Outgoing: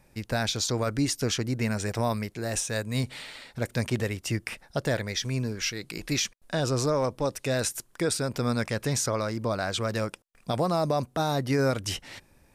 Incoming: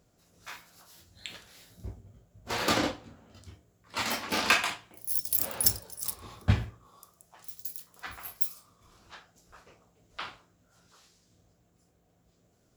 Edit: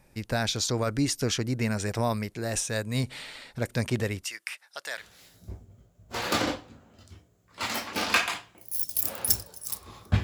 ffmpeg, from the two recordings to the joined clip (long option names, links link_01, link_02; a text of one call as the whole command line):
ffmpeg -i cue0.wav -i cue1.wav -filter_complex "[0:a]asettb=1/sr,asplit=3[link_01][link_02][link_03];[link_01]atrim=end=4.244[link_04];[link_02]atrim=start=4.24:end=5.05,asetpts=PTS-STARTPTS,afade=type=in:duration=0.004:curve=qsin,afade=type=out:start_time=0.806:duration=0.004:curve=qsin,highpass=1300[link_05];[link_03]atrim=start=5.046[link_06];[link_04][link_05]acrossfade=duration=0.004:curve1=hsin:curve2=qsin[link_07];[link_07][link_06]acrossfade=duration=0.004:curve1=qsin:curve2=hsin,apad=whole_dur=10.23,atrim=end=10.23,atrim=end=5.05,asetpts=PTS-STARTPTS[link_08];[1:a]atrim=start=1.31:end=6.59,asetpts=PTS-STARTPTS[link_09];[link_08][link_09]acrossfade=duration=0.1:curve1=tri:curve2=tri" out.wav